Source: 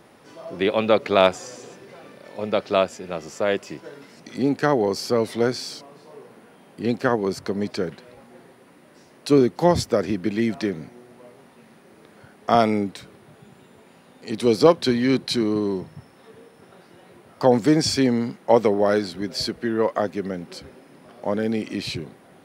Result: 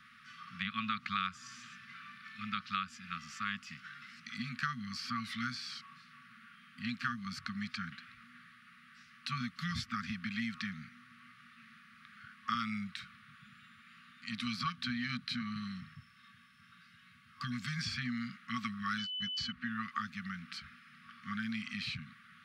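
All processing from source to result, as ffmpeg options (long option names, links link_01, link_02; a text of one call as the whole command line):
ffmpeg -i in.wav -filter_complex "[0:a]asettb=1/sr,asplit=3[link_01][link_02][link_03];[link_01]atrim=end=15.954[link_04];[link_02]atrim=start=15.95:end=17.79,asetpts=PTS-STARTPTS,afade=type=in:duration=0.004:curve=qsin,afade=type=out:start_time=1.836:duration=0.004:curve=qsin,equalizer=frequency=1400:width_type=o:width=2.4:gain=-5.5,aecho=1:1:1.9:0.31,atrim=end_sample=81144[link_05];[link_03]atrim=start=17.786[link_06];[link_04][link_05]acrossfade=duration=0.004:curve1=hsin:curve2=qsin[link_07];[link_07][link_06]acrossfade=duration=0.004:curve1=qsin:curve2=hsin,asettb=1/sr,asplit=3[link_08][link_09][link_10];[link_08]atrim=end=18.984[link_11];[link_09]atrim=start=18.98:end=19.52,asetpts=PTS-STARTPTS,afade=type=in:duration=0.004:curve=qsin,afade=type=out:start_time=0.536:duration=0.004:curve=qsin,agate=range=-37dB:threshold=-29dB:ratio=16:release=100:detection=peak,lowpass=frequency=6700:width_type=q:width=2.9,aeval=exprs='val(0)+0.0282*sin(2*PI*3000*n/s)':channel_layout=same[link_12];[link_10]atrim=start=19.516[link_13];[link_11][link_12]acrossfade=duration=0.004:curve1=hsin:curve2=qsin[link_14];[link_14][link_13]acrossfade=duration=0.004:curve1=qsin:curve2=hsin,afftfilt=real='re*(1-between(b*sr/4096,250,1100))':imag='im*(1-between(b*sr/4096,250,1100))':win_size=4096:overlap=0.75,acrossover=split=470 4200:gain=0.224 1 0.141[link_15][link_16][link_17];[link_15][link_16][link_17]amix=inputs=3:normalize=0,acrossover=split=1100|3500[link_18][link_19][link_20];[link_18]acompressor=threshold=-37dB:ratio=4[link_21];[link_19]acompressor=threshold=-44dB:ratio=4[link_22];[link_20]acompressor=threshold=-46dB:ratio=4[link_23];[link_21][link_22][link_23]amix=inputs=3:normalize=0,volume=1dB" out.wav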